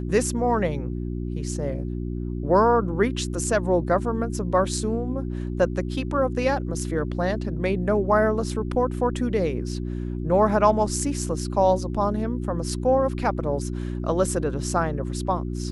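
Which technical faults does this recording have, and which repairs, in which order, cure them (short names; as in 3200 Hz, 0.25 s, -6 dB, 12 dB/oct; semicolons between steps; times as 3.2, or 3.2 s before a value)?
hum 60 Hz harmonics 6 -29 dBFS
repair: de-hum 60 Hz, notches 6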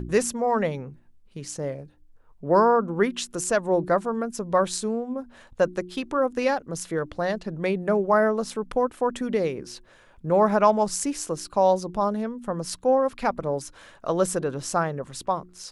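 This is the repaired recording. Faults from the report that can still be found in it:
none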